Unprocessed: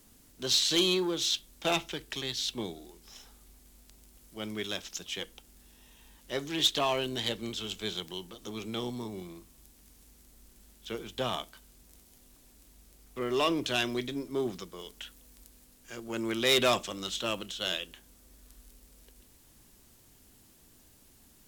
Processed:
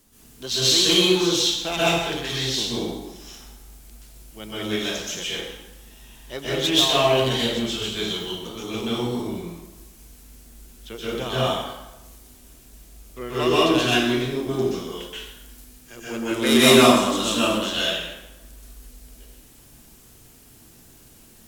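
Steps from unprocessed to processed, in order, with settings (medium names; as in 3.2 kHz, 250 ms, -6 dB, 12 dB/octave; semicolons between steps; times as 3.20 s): 16.31–17.47 s: fifteen-band graphic EQ 250 Hz +10 dB, 1 kHz +5 dB, 10 kHz +8 dB; plate-style reverb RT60 1 s, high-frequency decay 0.75×, pre-delay 115 ms, DRR -9.5 dB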